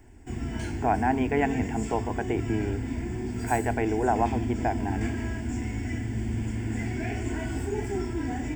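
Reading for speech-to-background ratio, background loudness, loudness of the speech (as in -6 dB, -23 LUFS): 3.0 dB, -32.0 LUFS, -29.0 LUFS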